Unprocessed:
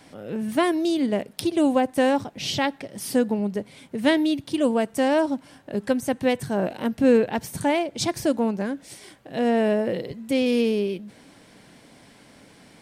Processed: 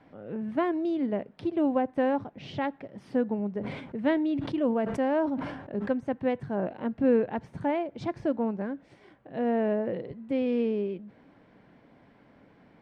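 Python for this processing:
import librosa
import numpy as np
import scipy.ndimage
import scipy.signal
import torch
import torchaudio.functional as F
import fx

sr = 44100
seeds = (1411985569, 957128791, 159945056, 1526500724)

y = scipy.signal.sosfilt(scipy.signal.butter(2, 1700.0, 'lowpass', fs=sr, output='sos'), x)
y = fx.sustainer(y, sr, db_per_s=53.0, at=(3.6, 5.91), fade=0.02)
y = y * 10.0 ** (-5.5 / 20.0)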